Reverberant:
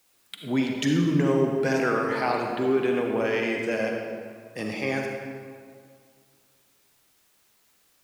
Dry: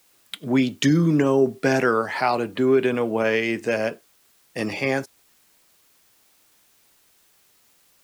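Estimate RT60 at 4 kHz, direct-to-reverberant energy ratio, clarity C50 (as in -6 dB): 1.3 s, 1.0 dB, 2.0 dB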